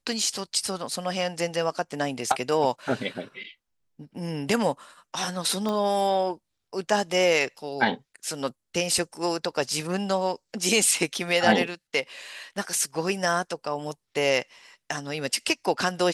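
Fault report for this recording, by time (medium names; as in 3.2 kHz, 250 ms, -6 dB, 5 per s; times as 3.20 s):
5.69 s: pop -17 dBFS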